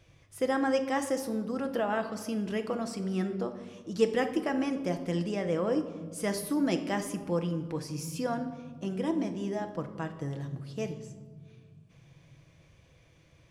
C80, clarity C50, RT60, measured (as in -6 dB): 12.5 dB, 10.5 dB, 1.5 s